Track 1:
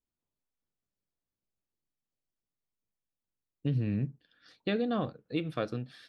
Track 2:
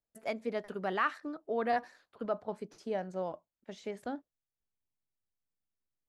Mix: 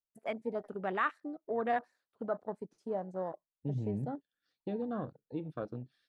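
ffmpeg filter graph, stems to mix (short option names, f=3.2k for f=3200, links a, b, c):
-filter_complex "[0:a]volume=-6dB[a];[1:a]equalizer=f=9.4k:w=1.5:g=7.5,volume=-1dB[b];[a][b]amix=inputs=2:normalize=0,afwtdn=0.00794"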